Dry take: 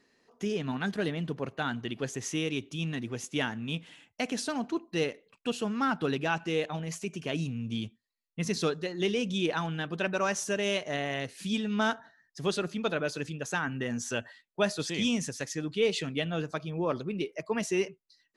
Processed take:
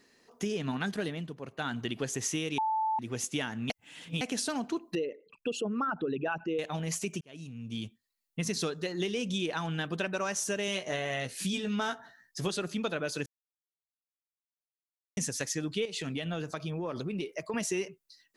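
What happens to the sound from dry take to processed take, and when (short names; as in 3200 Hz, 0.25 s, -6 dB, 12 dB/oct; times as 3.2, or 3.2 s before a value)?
0.87–1.88 dip -11 dB, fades 0.44 s
2.58–2.99 bleep 877 Hz -20.5 dBFS
3.7–4.21 reverse
4.95–6.59 formant sharpening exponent 2
7.21–8.4 fade in
10.66–12.5 doubler 16 ms -6 dB
13.26–15.17 mute
15.85–17.54 compressor, threshold -33 dBFS
whole clip: high shelf 6400 Hz +8.5 dB; compressor, threshold -32 dBFS; gain +3 dB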